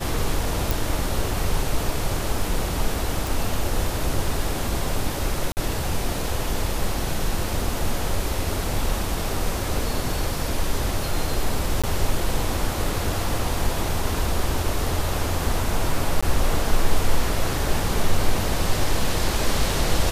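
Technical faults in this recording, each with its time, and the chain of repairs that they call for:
0:00.71: click
0:03.27: click
0:05.52–0:05.57: drop-out 49 ms
0:11.82–0:11.84: drop-out 16 ms
0:16.21–0:16.23: drop-out 15 ms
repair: click removal
repair the gap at 0:05.52, 49 ms
repair the gap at 0:11.82, 16 ms
repair the gap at 0:16.21, 15 ms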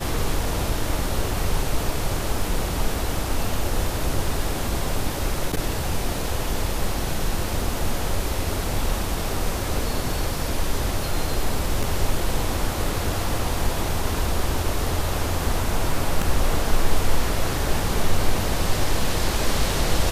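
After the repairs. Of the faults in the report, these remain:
none of them is left

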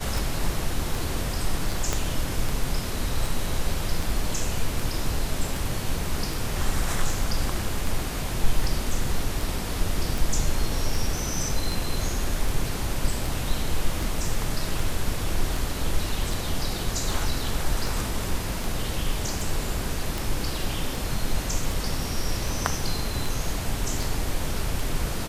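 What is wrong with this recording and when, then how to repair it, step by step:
scratch tick 78 rpm
0:01.93: click −9 dBFS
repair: click removal

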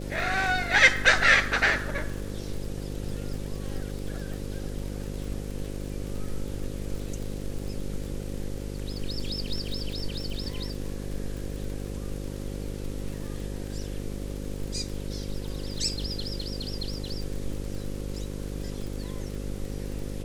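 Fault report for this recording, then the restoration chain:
mains buzz 50 Hz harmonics 11 −35 dBFS
surface crackle 49 per second −34 dBFS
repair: click removal
hum removal 50 Hz, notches 11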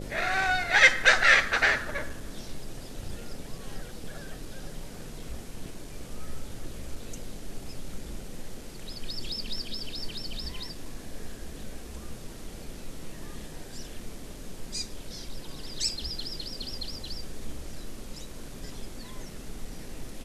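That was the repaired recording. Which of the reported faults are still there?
none of them is left

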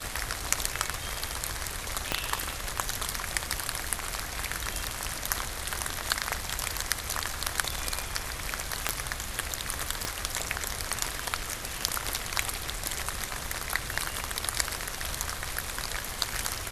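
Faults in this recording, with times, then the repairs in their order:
0:02.12: click −9 dBFS
0:08.89: click −6 dBFS
0:10.05: click −13 dBFS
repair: click removal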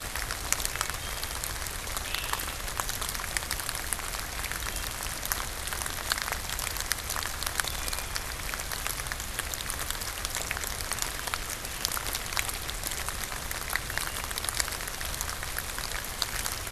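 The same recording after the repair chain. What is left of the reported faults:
0:02.12: click
0:10.05: click

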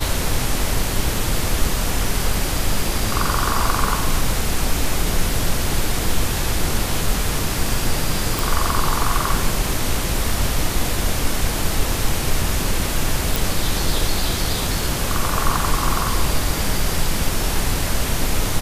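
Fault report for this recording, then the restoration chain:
0:08.39: click
0:13.36: click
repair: click removal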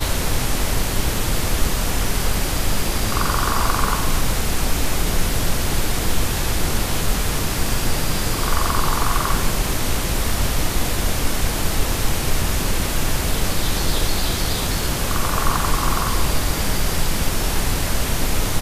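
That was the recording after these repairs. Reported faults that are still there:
none of them is left

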